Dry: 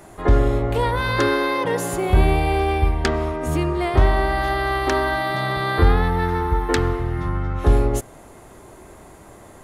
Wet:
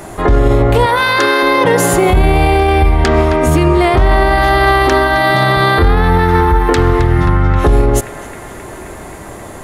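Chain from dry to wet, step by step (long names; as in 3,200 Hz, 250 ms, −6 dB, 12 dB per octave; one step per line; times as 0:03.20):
0:00.86–0:01.43: high-pass filter 670 Hz 6 dB per octave
feedback echo with a band-pass in the loop 265 ms, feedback 83%, band-pass 2,100 Hz, level −17 dB
boost into a limiter +15 dB
level −1 dB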